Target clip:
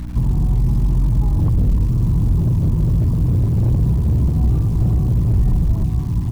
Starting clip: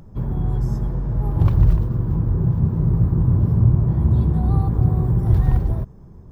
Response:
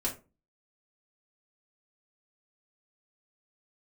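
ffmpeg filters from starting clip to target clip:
-filter_complex "[0:a]aecho=1:1:1002|2004|3006:0.251|0.0804|0.0257,acrossover=split=220|790[link_01][link_02][link_03];[link_03]acompressor=threshold=-52dB:ratio=6[link_04];[link_01][link_02][link_04]amix=inputs=3:normalize=0,bandreject=frequency=780:width=16,aecho=1:1:1:0.62,asoftclip=type=tanh:threshold=-10dB,aeval=exprs='0.299*(cos(1*acos(clip(val(0)/0.299,-1,1)))-cos(1*PI/2))+0.00944*(cos(2*acos(clip(val(0)/0.299,-1,1)))-cos(2*PI/2))+0.0299*(cos(4*acos(clip(val(0)/0.299,-1,1)))-cos(4*PI/2))+0.015*(cos(6*acos(clip(val(0)/0.299,-1,1)))-cos(6*PI/2))':channel_layout=same,alimiter=limit=-18.5dB:level=0:latency=1:release=18,lowshelf=frequency=86:gain=3.5,acrusher=bits=9:dc=4:mix=0:aa=0.000001,aeval=exprs='val(0)+0.0282*(sin(2*PI*60*n/s)+sin(2*PI*2*60*n/s)/2+sin(2*PI*3*60*n/s)/3+sin(2*PI*4*60*n/s)/4+sin(2*PI*5*60*n/s)/5)':channel_layout=same,volume=5dB"

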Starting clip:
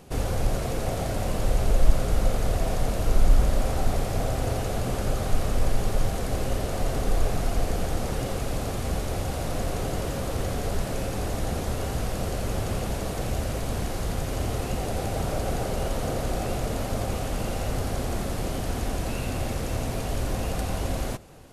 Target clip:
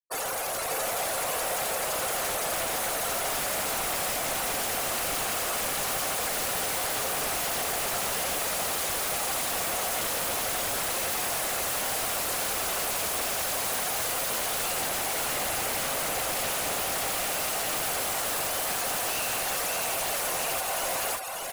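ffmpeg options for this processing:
ffmpeg -i in.wav -filter_complex "[0:a]highpass=870,highshelf=frequency=8600:gain=10.5,afftfilt=real='re*gte(hypot(re,im),0.0158)':imag='im*gte(hypot(re,im),0.0158)':win_size=1024:overlap=0.75,dynaudnorm=framelen=710:gausssize=11:maxgain=13dB,alimiter=level_in=1dB:limit=-24dB:level=0:latency=1:release=310,volume=-1dB,aeval=exprs='0.1*sin(PI/2*6.31*val(0)/0.1)':channel_layout=same,asplit=2[link_01][link_02];[link_02]aecho=0:1:589:0.668[link_03];[link_01][link_03]amix=inputs=2:normalize=0,volume=-8dB" out.wav

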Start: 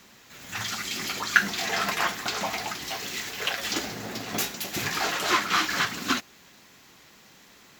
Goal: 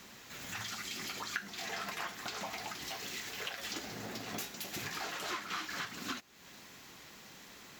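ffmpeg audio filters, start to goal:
ffmpeg -i in.wav -af "acompressor=threshold=-42dB:ratio=3" out.wav

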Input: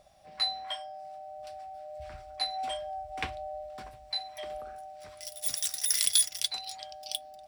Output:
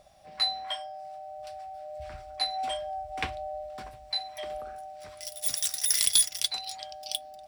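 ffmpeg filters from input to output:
ffmpeg -i in.wav -filter_complex "[0:a]asettb=1/sr,asplit=3[link_01][link_02][link_03];[link_01]atrim=end=0.874[link_04];[link_02]atrim=start=0.87:end=1.82,asetpts=PTS-STARTPTS,afade=type=in:duration=0.004:curve=qsin,afade=type=out:start_time=0.946:duration=0.004:curve=qsin,equalizer=frequency=280:width_type=o:width=0.55:gain=-11[link_05];[link_03]atrim=start=1.816[link_06];[link_04][link_05]acrossfade=duration=0.004:curve1=hsin:curve2=qsin[link_07];[link_07][link_06]acrossfade=duration=0.004:curve1=qsin:curve2=hsin,asplit=2[link_08][link_09];[link_09]aeval=exprs='clip(val(0),-1,0.0668)':channel_layout=same,volume=-9.5dB[link_10];[link_08][link_10]amix=inputs=2:normalize=0" out.wav

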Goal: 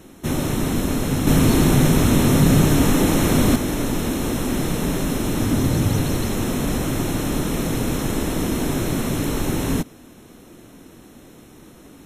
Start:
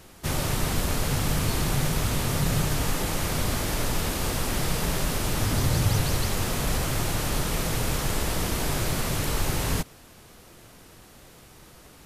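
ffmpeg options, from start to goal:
ffmpeg -i in.wav -filter_complex "[0:a]equalizer=frequency=270:width=1.1:gain=13.5,asettb=1/sr,asplit=3[link_01][link_02][link_03];[link_01]atrim=end=1.274[link_04];[link_02]atrim=start=1.27:end=3.56,asetpts=PTS-STARTPTS,afade=type=in:duration=0.004:curve=qsin,afade=type=out:start_time=2.286:duration=0.004:curve=qsin,acontrast=45[link_05];[link_03]atrim=start=3.556[link_06];[link_04][link_05]acrossfade=duration=0.004:curve1=hsin:curve2=qsin[link_07];[link_07][link_06]acrossfade=duration=0.004:curve1=qsin:curve2=hsin,asuperstop=centerf=4700:order=20:qfactor=6.9" out.wav

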